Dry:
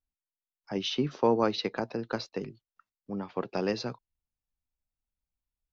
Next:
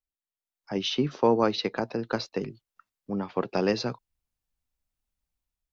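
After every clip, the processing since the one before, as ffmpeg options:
-af "dynaudnorm=f=220:g=5:m=11.5dB,volume=-6.5dB"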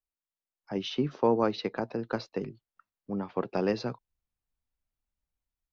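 -af "highshelf=f=3.1k:g=-9,volume=-2.5dB"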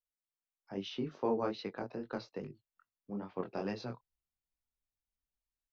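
-af "flanger=delay=20:depth=5.2:speed=2.4,volume=-5dB"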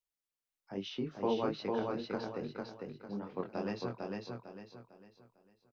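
-af "aecho=1:1:451|902|1353|1804|2255:0.708|0.248|0.0867|0.0304|0.0106"

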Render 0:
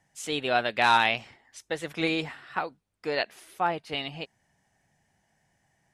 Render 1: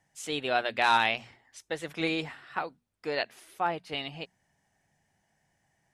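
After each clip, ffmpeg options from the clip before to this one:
-af "bandreject=f=60:t=h:w=6,bandreject=f=120:t=h:w=6,bandreject=f=180:t=h:w=6,bandreject=f=240:t=h:w=6,volume=-2.5dB"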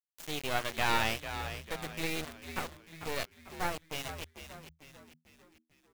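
-filter_complex "[0:a]asplit=2[a][b];[b]adelay=23,volume=-12dB[c];[a][c]amix=inputs=2:normalize=0,acrusher=bits=3:dc=4:mix=0:aa=0.000001,asplit=2[d][e];[e]asplit=5[f][g][h][i][j];[f]adelay=446,afreqshift=-80,volume=-10dB[k];[g]adelay=892,afreqshift=-160,volume=-16.7dB[l];[h]adelay=1338,afreqshift=-240,volume=-23.5dB[m];[i]adelay=1784,afreqshift=-320,volume=-30.2dB[n];[j]adelay=2230,afreqshift=-400,volume=-37dB[o];[k][l][m][n][o]amix=inputs=5:normalize=0[p];[d][p]amix=inputs=2:normalize=0,volume=-2.5dB"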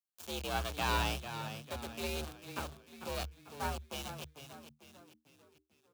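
-af "acrusher=bits=8:mode=log:mix=0:aa=0.000001,equalizer=f=1.9k:w=4.3:g=-12,afreqshift=68,volume=-2.5dB"

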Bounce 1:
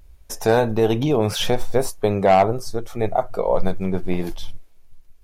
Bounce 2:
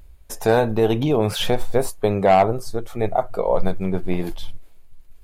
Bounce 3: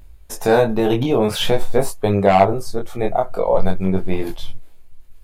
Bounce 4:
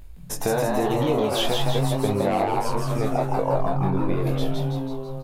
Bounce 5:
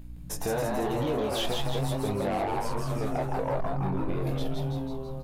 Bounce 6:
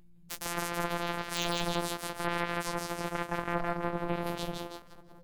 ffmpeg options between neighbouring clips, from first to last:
-af "equalizer=f=5.7k:w=4.3:g=-7,areverse,acompressor=mode=upward:threshold=-34dB:ratio=2.5,areverse"
-af "flanger=delay=20:depth=3.8:speed=0.46,volume=5.5dB"
-filter_complex "[0:a]acompressor=threshold=-21dB:ratio=6,asplit=2[a][b];[b]asplit=8[c][d][e][f][g][h][i][j];[c]adelay=164,afreqshift=130,volume=-3dB[k];[d]adelay=328,afreqshift=260,volume=-7.9dB[l];[e]adelay=492,afreqshift=390,volume=-12.8dB[m];[f]adelay=656,afreqshift=520,volume=-17.6dB[n];[g]adelay=820,afreqshift=650,volume=-22.5dB[o];[h]adelay=984,afreqshift=780,volume=-27.4dB[p];[i]adelay=1148,afreqshift=910,volume=-32.3dB[q];[j]adelay=1312,afreqshift=1040,volume=-37.2dB[r];[k][l][m][n][o][p][q][r]amix=inputs=8:normalize=0[s];[a][s]amix=inputs=2:normalize=0"
-af "asoftclip=type=tanh:threshold=-18dB,aeval=exprs='val(0)+0.01*(sin(2*PI*60*n/s)+sin(2*PI*2*60*n/s)/2+sin(2*PI*3*60*n/s)/3+sin(2*PI*4*60*n/s)/4+sin(2*PI*5*60*n/s)/5)':c=same,volume=-4dB"
-af "afftfilt=real='hypot(re,im)*cos(PI*b)':imag='0':win_size=1024:overlap=0.75,aeval=exprs='0.211*(cos(1*acos(clip(val(0)/0.211,-1,1)))-cos(1*PI/2))+0.00531*(cos(5*acos(clip(val(0)/0.211,-1,1)))-cos(5*PI/2))+0.0422*(cos(7*acos(clip(val(0)/0.211,-1,1)))-cos(7*PI/2))':c=same,volume=1dB"

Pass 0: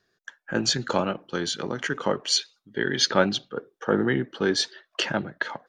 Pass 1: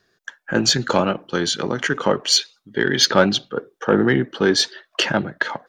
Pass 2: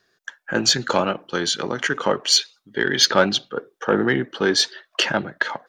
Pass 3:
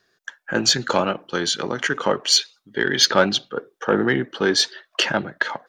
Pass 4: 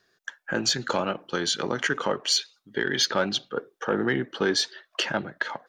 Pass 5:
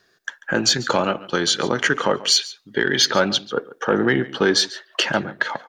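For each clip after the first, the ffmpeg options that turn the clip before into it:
-af "acontrast=82"
-af "lowshelf=f=330:g=-6.5"
-af anull
-af "alimiter=limit=-11dB:level=0:latency=1:release=356,volume=-2dB"
-af "aecho=1:1:141:0.119,volume=6.5dB"

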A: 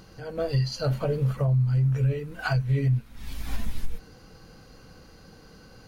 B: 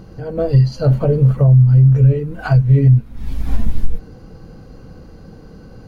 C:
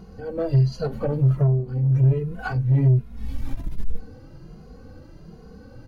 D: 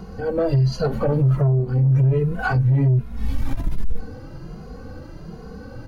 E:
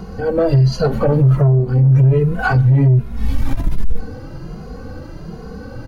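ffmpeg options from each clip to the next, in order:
-af "tiltshelf=f=970:g=8,volume=5.5dB"
-filter_complex "[0:a]asoftclip=type=tanh:threshold=-9dB,asplit=2[a][b];[b]adelay=2.4,afreqshift=1.3[c];[a][c]amix=inputs=2:normalize=1,volume=-2.5dB"
-filter_complex "[0:a]acrossover=split=350|1500[a][b][c];[b]crystalizer=i=8:c=0[d];[a][d][c]amix=inputs=3:normalize=0,alimiter=limit=-19dB:level=0:latency=1:release=40,volume=7dB"
-filter_complex "[0:a]asplit=2[a][b];[b]adelay=130,highpass=300,lowpass=3.4k,asoftclip=type=hard:threshold=-21dB,volume=-23dB[c];[a][c]amix=inputs=2:normalize=0,volume=5.5dB"

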